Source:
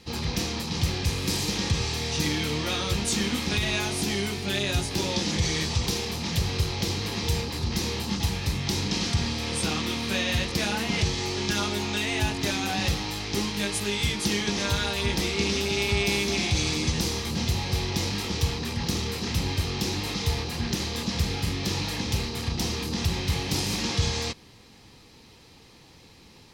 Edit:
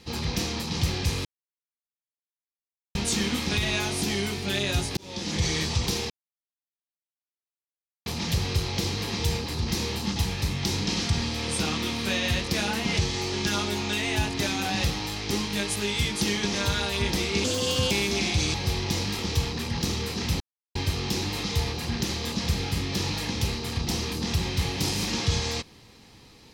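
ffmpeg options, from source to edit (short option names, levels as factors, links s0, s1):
-filter_complex "[0:a]asplit=9[s0][s1][s2][s3][s4][s5][s6][s7][s8];[s0]atrim=end=1.25,asetpts=PTS-STARTPTS,afade=t=out:st=1.246:d=0.004:c=hsin[s9];[s1]atrim=start=1.25:end=2.95,asetpts=PTS-STARTPTS,volume=0[s10];[s2]atrim=start=2.95:end=4.97,asetpts=PTS-STARTPTS,afade=t=in:d=0.004:c=hsin,afade=t=out:st=2.016:d=0.004:c=hsin[s11];[s3]atrim=start=4.97:end=6.1,asetpts=PTS-STARTPTS,afade=t=in:d=0.46,afade=t=out:st=1.126:d=0.004:c=hsin,apad=pad_dur=1.96[s12];[s4]atrim=start=6.1:end=15.484,asetpts=PTS-STARTPTS,afade=t=in:d=0.004:c=hsin[s13];[s5]atrim=start=15.48:end=16.08,asetpts=PTS-STARTPTS,asetrate=56007,aresample=44100[s14];[s6]atrim=start=16.076:end=16.712[s15];[s7]atrim=start=17.598:end=19.46,asetpts=PTS-STARTPTS,afade=t=out:st=1.858:d=0.004:c=hsin,apad=pad_dur=0.35[s16];[s8]atrim=start=19.46,asetpts=PTS-STARTPTS,afade=t=in:d=0.004:c=hsin[s17];[s9][s10][s11][s12][s13]concat=n=5:v=0:a=1[s18];[s18][s14]acrossfade=d=0.004:c1=hsin:c2=hsin[s19];[s19][s15]acrossfade=d=0.004:c1=hsin:c2=hsin[s20];[s16][s17]concat=n=2:v=0:a=1[s21];[s20][s21]acrossfade=d=0.004:c1=hsin:c2=hsin"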